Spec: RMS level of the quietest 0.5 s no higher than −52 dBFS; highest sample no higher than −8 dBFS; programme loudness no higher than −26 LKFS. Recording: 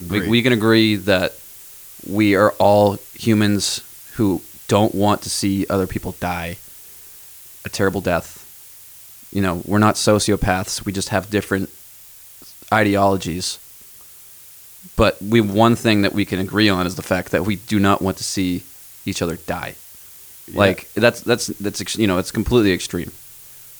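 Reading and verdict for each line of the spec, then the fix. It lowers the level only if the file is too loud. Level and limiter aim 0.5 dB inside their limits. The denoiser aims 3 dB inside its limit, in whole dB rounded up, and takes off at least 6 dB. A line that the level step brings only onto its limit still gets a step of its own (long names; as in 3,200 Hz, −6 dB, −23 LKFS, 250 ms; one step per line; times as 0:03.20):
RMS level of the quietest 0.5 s −43 dBFS: out of spec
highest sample −1.5 dBFS: out of spec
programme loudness −18.5 LKFS: out of spec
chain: broadband denoise 6 dB, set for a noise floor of −43 dBFS
level −8 dB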